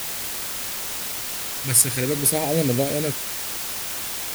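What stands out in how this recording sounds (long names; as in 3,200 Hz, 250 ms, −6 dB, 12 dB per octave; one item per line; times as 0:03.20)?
phaser sweep stages 2, 0.48 Hz, lowest notch 530–1,300 Hz
a quantiser's noise floor 6 bits, dither triangular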